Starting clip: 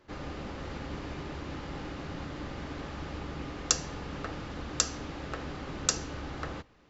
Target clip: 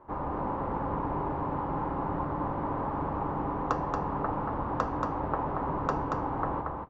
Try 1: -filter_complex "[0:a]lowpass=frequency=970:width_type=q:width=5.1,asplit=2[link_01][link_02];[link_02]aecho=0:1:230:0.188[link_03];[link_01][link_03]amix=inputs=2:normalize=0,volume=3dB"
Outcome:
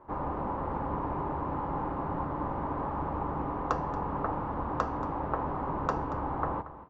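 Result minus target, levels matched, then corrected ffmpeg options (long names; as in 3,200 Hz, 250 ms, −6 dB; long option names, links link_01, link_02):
echo-to-direct −10.5 dB
-filter_complex "[0:a]lowpass=frequency=970:width_type=q:width=5.1,asplit=2[link_01][link_02];[link_02]aecho=0:1:230:0.631[link_03];[link_01][link_03]amix=inputs=2:normalize=0,volume=3dB"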